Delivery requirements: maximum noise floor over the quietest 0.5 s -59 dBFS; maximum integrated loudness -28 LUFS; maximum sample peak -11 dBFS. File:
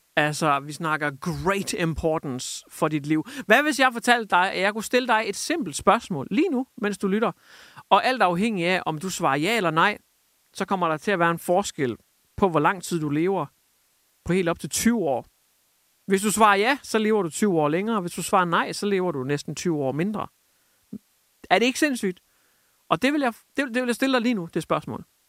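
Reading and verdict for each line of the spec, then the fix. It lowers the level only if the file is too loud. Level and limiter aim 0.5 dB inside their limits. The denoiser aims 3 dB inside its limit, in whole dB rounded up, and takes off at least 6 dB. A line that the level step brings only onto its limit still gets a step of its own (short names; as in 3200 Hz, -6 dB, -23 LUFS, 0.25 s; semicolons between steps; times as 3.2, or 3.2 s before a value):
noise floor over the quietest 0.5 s -66 dBFS: OK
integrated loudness -23.5 LUFS: fail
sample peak -1.5 dBFS: fail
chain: gain -5 dB; limiter -11.5 dBFS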